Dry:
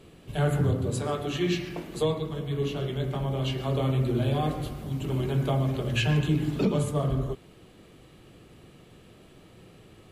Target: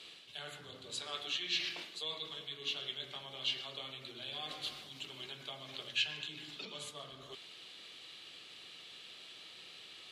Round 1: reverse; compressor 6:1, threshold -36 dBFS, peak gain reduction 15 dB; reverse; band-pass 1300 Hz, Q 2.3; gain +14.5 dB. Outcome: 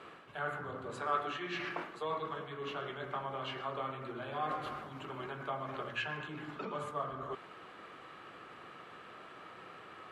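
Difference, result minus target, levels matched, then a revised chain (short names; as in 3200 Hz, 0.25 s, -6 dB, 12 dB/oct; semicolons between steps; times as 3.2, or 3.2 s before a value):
1000 Hz band +13.0 dB
reverse; compressor 6:1, threshold -36 dBFS, peak gain reduction 15 dB; reverse; band-pass 3800 Hz, Q 2.3; gain +14.5 dB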